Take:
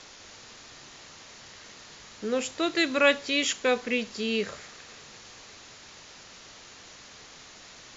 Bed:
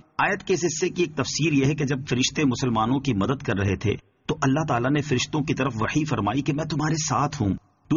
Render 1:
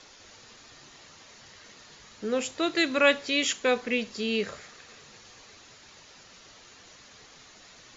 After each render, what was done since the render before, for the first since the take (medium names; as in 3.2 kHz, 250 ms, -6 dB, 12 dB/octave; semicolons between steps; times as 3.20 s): noise reduction 6 dB, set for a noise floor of -49 dBFS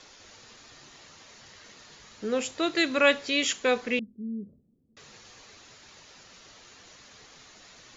3.99–4.97 s: four-pole ladder low-pass 280 Hz, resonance 50%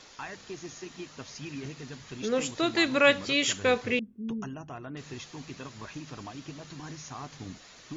add bed -18.5 dB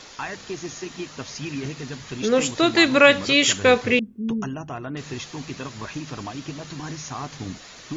trim +8.5 dB; peak limiter -3 dBFS, peak gain reduction 3 dB